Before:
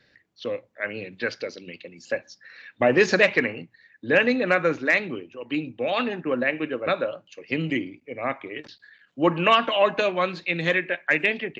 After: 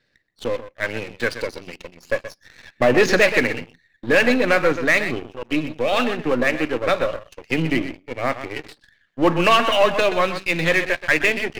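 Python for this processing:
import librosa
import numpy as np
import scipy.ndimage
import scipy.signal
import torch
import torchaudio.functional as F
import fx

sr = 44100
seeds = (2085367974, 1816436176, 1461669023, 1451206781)

y = np.where(x < 0.0, 10.0 ** (-7.0 / 20.0) * x, x)
y = y + 10.0 ** (-12.0 / 20.0) * np.pad(y, (int(126 * sr / 1000.0), 0))[:len(y)]
y = fx.leveller(y, sr, passes=2)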